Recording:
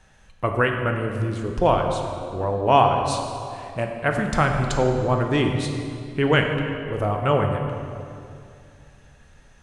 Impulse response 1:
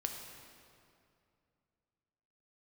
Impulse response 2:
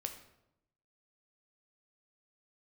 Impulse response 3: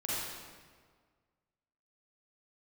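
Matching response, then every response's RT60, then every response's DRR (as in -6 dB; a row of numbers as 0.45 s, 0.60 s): 1; 2.5 s, 0.85 s, 1.7 s; 2.5 dB, 5.0 dB, -8.5 dB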